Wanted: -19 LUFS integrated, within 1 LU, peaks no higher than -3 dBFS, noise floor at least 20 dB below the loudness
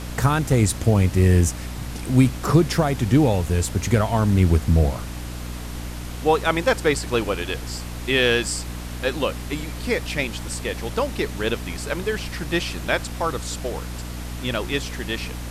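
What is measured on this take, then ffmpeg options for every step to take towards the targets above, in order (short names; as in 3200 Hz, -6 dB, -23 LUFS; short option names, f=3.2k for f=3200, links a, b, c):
hum 60 Hz; harmonics up to 300 Hz; hum level -30 dBFS; noise floor -32 dBFS; noise floor target -43 dBFS; loudness -22.5 LUFS; peak -5.0 dBFS; loudness target -19.0 LUFS
-> -af "bandreject=f=60:t=h:w=4,bandreject=f=120:t=h:w=4,bandreject=f=180:t=h:w=4,bandreject=f=240:t=h:w=4,bandreject=f=300:t=h:w=4"
-af "afftdn=nr=11:nf=-32"
-af "volume=3.5dB,alimiter=limit=-3dB:level=0:latency=1"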